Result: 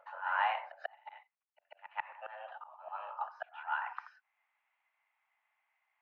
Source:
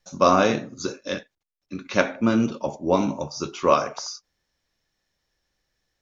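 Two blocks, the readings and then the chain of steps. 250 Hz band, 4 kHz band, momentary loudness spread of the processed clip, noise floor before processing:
below −40 dB, −18.5 dB, 22 LU, −81 dBFS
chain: single-sideband voice off tune +310 Hz 430–2,400 Hz
volume swells 773 ms
backwards echo 141 ms −14 dB
level +1 dB

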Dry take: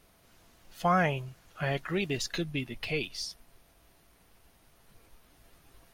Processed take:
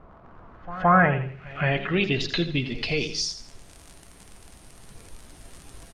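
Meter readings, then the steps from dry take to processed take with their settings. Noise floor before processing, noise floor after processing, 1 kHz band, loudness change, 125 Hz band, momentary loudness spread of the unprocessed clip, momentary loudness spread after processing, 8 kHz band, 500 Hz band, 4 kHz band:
−63 dBFS, −50 dBFS, +8.0 dB, +7.5 dB, +8.0 dB, 12 LU, 12 LU, +6.0 dB, +6.0 dB, +8.5 dB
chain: low-shelf EQ 470 Hz +6 dB
on a send: repeating echo 83 ms, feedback 30%, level −11.5 dB
on the sum: surface crackle 67 per second −43 dBFS
low-pass filter sweep 1,100 Hz → 9,000 Hz, 0:00.35–0:03.81
in parallel at +2.5 dB: downward compressor, threshold −43 dBFS, peak gain reduction 24.5 dB
on the sum: hum removal 52.58 Hz, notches 10
echo ahead of the sound 170 ms −18.5 dB
level +1.5 dB

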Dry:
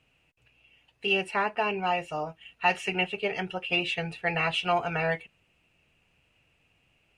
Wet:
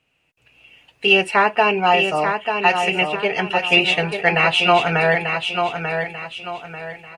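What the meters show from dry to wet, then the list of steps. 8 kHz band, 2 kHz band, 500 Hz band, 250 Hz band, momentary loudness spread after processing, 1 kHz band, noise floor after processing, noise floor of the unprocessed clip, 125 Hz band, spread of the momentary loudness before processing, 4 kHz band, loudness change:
+11.5 dB, +12.0 dB, +11.5 dB, +10.0 dB, 15 LU, +11.5 dB, −65 dBFS, −70 dBFS, +9.5 dB, 8 LU, +12.5 dB, +11.0 dB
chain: low-shelf EQ 120 Hz −9 dB
automatic gain control gain up to 14 dB
on a send: repeating echo 891 ms, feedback 36%, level −6 dB

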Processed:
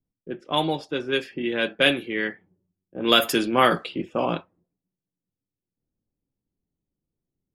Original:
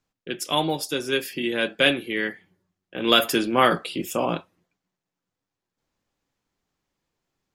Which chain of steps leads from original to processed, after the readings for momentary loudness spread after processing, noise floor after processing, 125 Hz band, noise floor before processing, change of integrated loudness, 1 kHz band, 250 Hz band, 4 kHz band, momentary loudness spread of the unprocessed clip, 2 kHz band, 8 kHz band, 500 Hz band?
11 LU, below −85 dBFS, 0.0 dB, below −85 dBFS, 0.0 dB, 0.0 dB, 0.0 dB, −0.5 dB, 11 LU, −0.5 dB, −5.0 dB, 0.0 dB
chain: low-pass that shuts in the quiet parts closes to 310 Hz, open at −17.5 dBFS

